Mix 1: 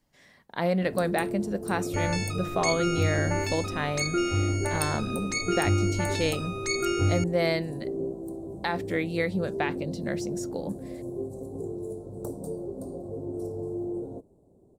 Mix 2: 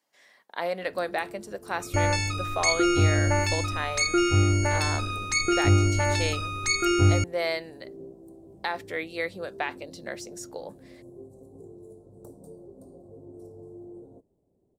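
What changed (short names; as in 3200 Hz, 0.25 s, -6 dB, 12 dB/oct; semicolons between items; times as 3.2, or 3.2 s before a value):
speech: add HPF 500 Hz 12 dB/oct; first sound -11.5 dB; second sound +5.0 dB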